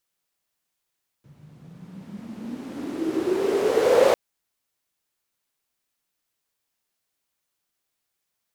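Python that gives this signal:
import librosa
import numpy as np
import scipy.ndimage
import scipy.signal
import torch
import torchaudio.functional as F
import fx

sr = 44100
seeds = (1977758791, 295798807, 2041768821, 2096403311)

y = fx.riser_noise(sr, seeds[0], length_s=2.9, colour='white', kind='bandpass', start_hz=130.0, end_hz=540.0, q=8.6, swell_db=29.5, law='exponential')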